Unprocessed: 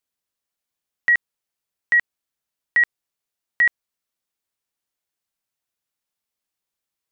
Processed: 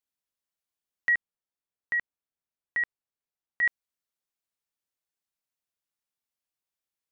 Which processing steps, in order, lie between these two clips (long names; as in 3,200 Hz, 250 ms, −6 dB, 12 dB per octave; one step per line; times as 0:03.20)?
0:01.15–0:03.63: high-shelf EQ 2,100 Hz −9 dB
level −7 dB